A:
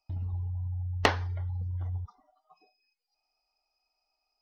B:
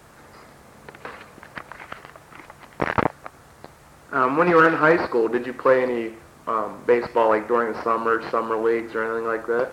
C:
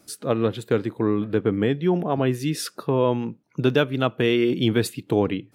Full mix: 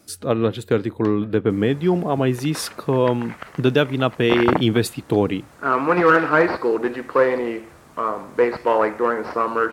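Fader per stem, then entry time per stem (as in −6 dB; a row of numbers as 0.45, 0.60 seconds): −18.5, +0.5, +2.5 decibels; 0.00, 1.50, 0.00 seconds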